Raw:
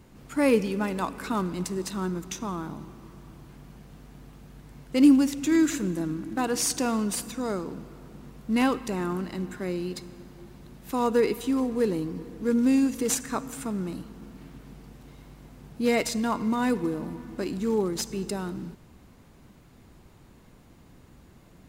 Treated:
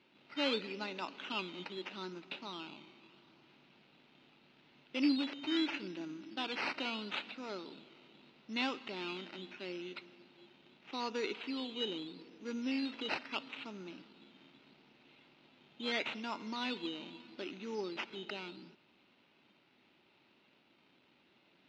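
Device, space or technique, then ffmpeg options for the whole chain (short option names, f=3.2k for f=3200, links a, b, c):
circuit-bent sampling toy: -af "acrusher=samples=10:mix=1:aa=0.000001:lfo=1:lforange=6:lforate=0.78,highpass=450,equalizer=f=480:t=q:w=4:g=-9,equalizer=f=710:t=q:w=4:g=-7,equalizer=f=1.1k:t=q:w=4:g=-9,equalizer=f=1.7k:t=q:w=4:g=-6,equalizer=f=2.7k:t=q:w=4:g=6,equalizer=f=3.9k:t=q:w=4:g=4,lowpass=f=4.1k:w=0.5412,lowpass=f=4.1k:w=1.3066,volume=-5dB"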